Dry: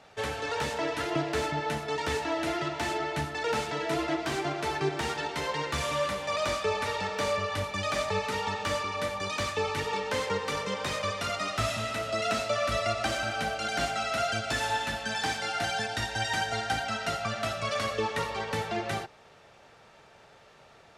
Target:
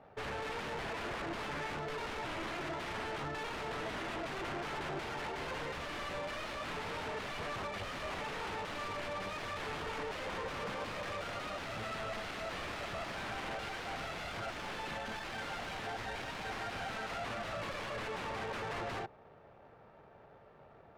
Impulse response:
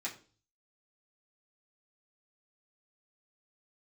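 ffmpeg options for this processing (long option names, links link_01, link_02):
-af "aeval=exprs='0.0224*(abs(mod(val(0)/0.0224+3,4)-2)-1)':channel_layout=same,adynamicsmooth=sensitivity=7.5:basefreq=1100"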